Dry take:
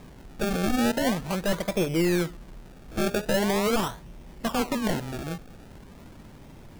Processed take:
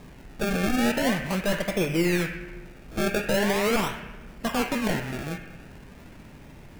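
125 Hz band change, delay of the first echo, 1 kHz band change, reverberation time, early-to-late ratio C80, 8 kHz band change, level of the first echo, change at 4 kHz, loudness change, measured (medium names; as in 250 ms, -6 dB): +0.5 dB, no echo, +0.5 dB, 1.3 s, 6.0 dB, 0.0 dB, no echo, +1.0 dB, +1.0 dB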